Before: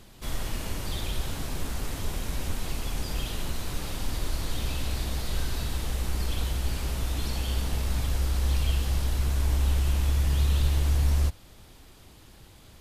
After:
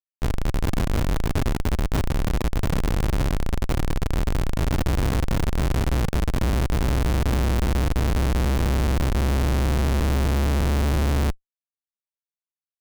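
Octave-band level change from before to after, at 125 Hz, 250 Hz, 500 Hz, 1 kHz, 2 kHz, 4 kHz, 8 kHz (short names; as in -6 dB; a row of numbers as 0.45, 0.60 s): +5.5, +12.0, +11.5, +9.5, +7.0, +0.5, +0.5 dB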